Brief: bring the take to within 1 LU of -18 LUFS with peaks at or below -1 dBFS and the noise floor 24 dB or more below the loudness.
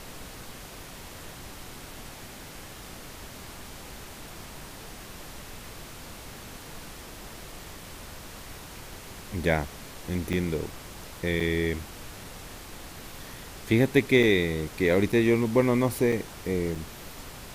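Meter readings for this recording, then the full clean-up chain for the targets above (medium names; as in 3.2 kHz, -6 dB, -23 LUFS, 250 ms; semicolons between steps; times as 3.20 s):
dropouts 6; longest dropout 4.7 ms; noise floor -44 dBFS; noise floor target -50 dBFS; loudness -26.0 LUFS; peak level -6.5 dBFS; loudness target -18.0 LUFS
-> interpolate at 10.33/11.40/14.23/15.12/16.12/16.75 s, 4.7 ms; noise print and reduce 6 dB; trim +8 dB; peak limiter -1 dBFS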